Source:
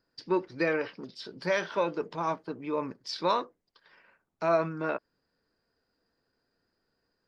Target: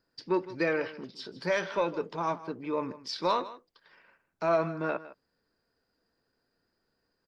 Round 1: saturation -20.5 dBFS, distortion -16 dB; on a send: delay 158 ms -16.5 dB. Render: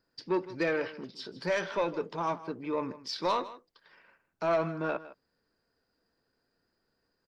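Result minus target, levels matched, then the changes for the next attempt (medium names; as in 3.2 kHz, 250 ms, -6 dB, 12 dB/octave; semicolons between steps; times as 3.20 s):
saturation: distortion +10 dB
change: saturation -14 dBFS, distortion -26 dB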